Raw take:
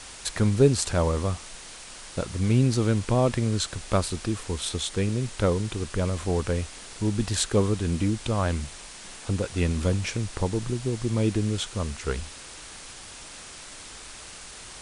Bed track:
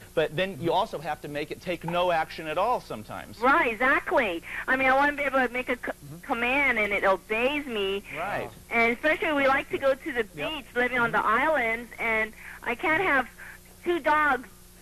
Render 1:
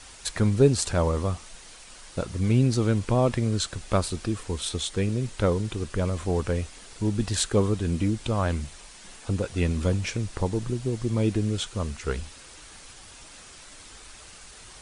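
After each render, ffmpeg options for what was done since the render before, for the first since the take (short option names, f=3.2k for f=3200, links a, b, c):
-af "afftdn=nr=6:nf=-43"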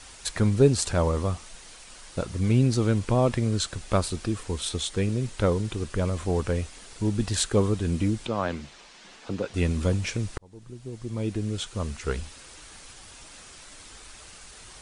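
-filter_complex "[0:a]asettb=1/sr,asplit=3[a][b][c];[a]atrim=end=8.264[d];[b]atrim=start=8.26:end=9.54,asetpts=PTS-STARTPTS,afade=t=in:d=0.004:c=qsin,afade=t=out:st=1.276:d=0.004:c=qsin,acrossover=split=160 6300:gain=0.2 1 0.0891[e][f][g];[e][f][g]amix=inputs=3:normalize=0[h];[c]atrim=start=9.536[i];[d][h]acrossfade=d=0.004:c1=hsin:c2=qsin[j];[j][i]acrossfade=d=0.004:c1=qsin:c2=hsin,asplit=2[k][l];[k]atrim=end=10.38,asetpts=PTS-STARTPTS,afade=t=out:st=10.376:d=0.004:c=hsin[m];[l]atrim=start=10.38,asetpts=PTS-STARTPTS,afade=t=in:d=1.6[n];[m][n]concat=n=2:v=0:a=1"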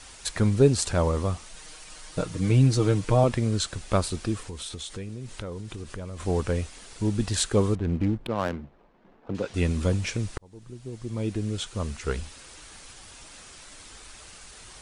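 -filter_complex "[0:a]asettb=1/sr,asplit=3[a][b][c];[a]atrim=end=1.564[d];[b]atrim=start=1.56:end=3.24,asetpts=PTS-STARTPTS,afade=t=in:d=0.004:c=qsin,afade=t=out:st=1.676:d=0.004:c=qsin,aecho=1:1:6.5:0.65,atrim=end_sample=74088[e];[c]atrim=start=3.236[f];[d][e]acrossfade=d=0.004:c1=hsin:c2=qsin[g];[g][f]acrossfade=d=0.004:c1=qsin:c2=hsin,asettb=1/sr,asplit=3[h][i][j];[h]atrim=end=4.474[k];[i]atrim=start=4.47:end=6.2,asetpts=PTS-STARTPTS,afade=t=in:d=0.004:c=qsin,afade=t=out:st=1.726:d=0.004:c=qsin,acompressor=threshold=-33dB:ratio=5:attack=3.2:release=140:knee=1:detection=peak[l];[j]atrim=start=6.196[m];[k][l]acrossfade=d=0.004:c1=hsin:c2=qsin[n];[n][m]acrossfade=d=0.004:c1=qsin:c2=hsin,asettb=1/sr,asplit=3[o][p][q];[o]atrim=end=7.754[r];[p]atrim=start=7.75:end=9.35,asetpts=PTS-STARTPTS,afade=t=in:d=0.004:c=qsin,afade=t=out:st=1.596:d=0.004:c=qsin,adynamicsmooth=sensitivity=4:basefreq=570[s];[q]atrim=start=9.346[t];[r][s]acrossfade=d=0.004:c1=hsin:c2=qsin[u];[u][t]acrossfade=d=0.004:c1=qsin:c2=hsin"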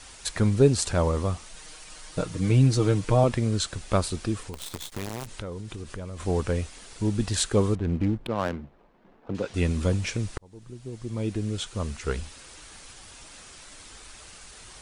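-filter_complex "[0:a]asettb=1/sr,asplit=3[a][b][c];[a]atrim=end=4.534[d];[b]atrim=start=4.53:end=5.27,asetpts=PTS-STARTPTS,afade=t=in:d=0.004:c=qsin,afade=t=out:st=0.736:d=0.004:c=qsin,acrusher=bits=6:dc=4:mix=0:aa=0.000001[e];[c]atrim=start=5.266[f];[d][e]acrossfade=d=0.004:c1=hsin:c2=qsin[g];[g][f]acrossfade=d=0.004:c1=qsin:c2=hsin"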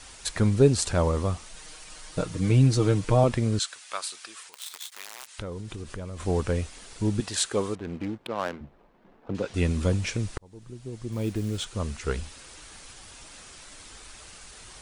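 -filter_complex "[0:a]asettb=1/sr,asplit=3[a][b][c];[a]atrim=end=3.594[d];[b]atrim=start=3.59:end=5.39,asetpts=PTS-STARTPTS,afade=t=in:d=0.004:c=qsin,afade=t=out:st=1.796:d=0.004:c=qsin,highpass=1.3k[e];[c]atrim=start=5.386[f];[d][e]acrossfade=d=0.004:c1=hsin:c2=qsin[g];[g][f]acrossfade=d=0.004:c1=qsin:c2=hsin,asettb=1/sr,asplit=3[h][i][j];[h]atrim=end=7.204[k];[i]atrim=start=7.2:end=8.61,asetpts=PTS-STARTPTS,afade=t=in:d=0.004:c=qsin,afade=t=out:st=1.406:d=0.004:c=qsin,highpass=f=450:p=1[l];[j]atrim=start=8.606[m];[k][l]acrossfade=d=0.004:c1=hsin:c2=qsin[n];[n][m]acrossfade=d=0.004:c1=qsin:c2=hsin,asettb=1/sr,asplit=3[o][p][q];[o]atrim=end=11.124[r];[p]atrim=start=11.12:end=11.65,asetpts=PTS-STARTPTS,afade=t=in:d=0.004:c=qsin,afade=t=out:st=0.526:d=0.004:c=qsin,acrusher=bits=6:mode=log:mix=0:aa=0.000001[s];[q]atrim=start=11.646[t];[r][s]acrossfade=d=0.004:c1=hsin:c2=qsin[u];[u][t]acrossfade=d=0.004:c1=qsin:c2=hsin"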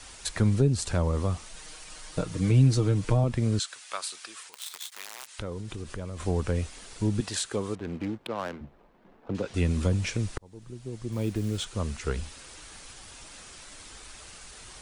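-filter_complex "[0:a]acrossover=split=230[a][b];[b]acompressor=threshold=-28dB:ratio=5[c];[a][c]amix=inputs=2:normalize=0"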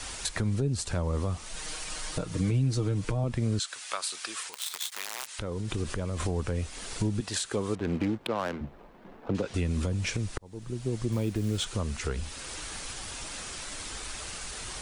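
-filter_complex "[0:a]asplit=2[a][b];[b]acompressor=threshold=-33dB:ratio=6,volume=3dB[c];[a][c]amix=inputs=2:normalize=0,alimiter=limit=-18.5dB:level=0:latency=1:release=447"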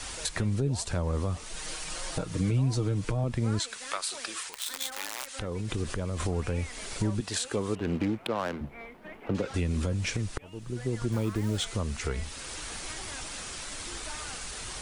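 -filter_complex "[1:a]volume=-23.5dB[a];[0:a][a]amix=inputs=2:normalize=0"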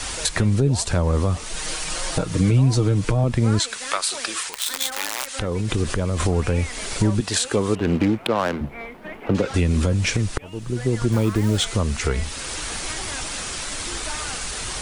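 -af "volume=9.5dB"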